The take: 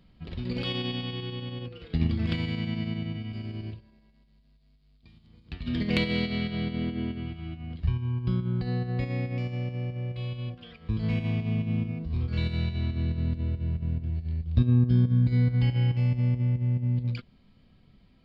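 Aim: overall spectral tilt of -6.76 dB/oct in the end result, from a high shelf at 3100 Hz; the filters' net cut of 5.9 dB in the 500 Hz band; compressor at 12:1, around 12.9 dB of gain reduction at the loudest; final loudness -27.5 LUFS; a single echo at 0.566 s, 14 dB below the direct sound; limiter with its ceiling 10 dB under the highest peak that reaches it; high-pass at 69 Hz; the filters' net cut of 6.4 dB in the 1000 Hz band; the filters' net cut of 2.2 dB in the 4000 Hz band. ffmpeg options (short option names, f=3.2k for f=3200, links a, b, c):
-af "highpass=69,equalizer=f=500:t=o:g=-6.5,equalizer=f=1k:t=o:g=-6.5,highshelf=f=3.1k:g=5.5,equalizer=f=4k:t=o:g=-6.5,acompressor=threshold=-31dB:ratio=12,alimiter=level_in=7.5dB:limit=-24dB:level=0:latency=1,volume=-7.5dB,aecho=1:1:566:0.2,volume=12dB"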